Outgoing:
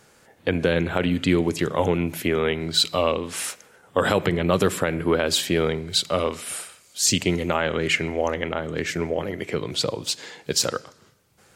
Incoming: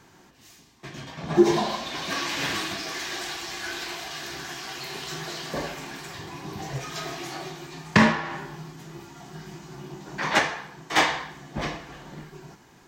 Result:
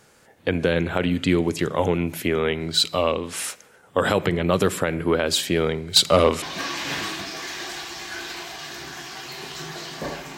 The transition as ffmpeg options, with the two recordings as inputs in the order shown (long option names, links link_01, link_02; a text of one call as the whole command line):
ffmpeg -i cue0.wav -i cue1.wav -filter_complex "[0:a]asettb=1/sr,asplit=3[link_01][link_02][link_03];[link_01]atrim=end=5.964[link_04];[link_02]atrim=start=5.96:end=6.42,asetpts=PTS-STARTPTS,afade=type=in:duration=0.004:curve=qsin,afade=type=out:start_time=0.456:duration=0.004:curve=qsin,aeval=exprs='0.473*sin(PI/2*1.58*val(0)/0.473)':channel_layout=same[link_05];[link_03]atrim=start=6.416[link_06];[link_04][link_05]acrossfade=duration=0.004:curve1=hsin:curve2=qsin[link_07];[link_07][link_06]acrossfade=duration=0.004:curve1=qsin:curve2=hsin,apad=whole_dur=10.37,atrim=end=10.37,atrim=end=6.422[link_08];[1:a]atrim=start=1.938:end=5.89[link_09];[link_08][link_09]acrossfade=duration=0.004:curve1=hsin:curve2=hsin" out.wav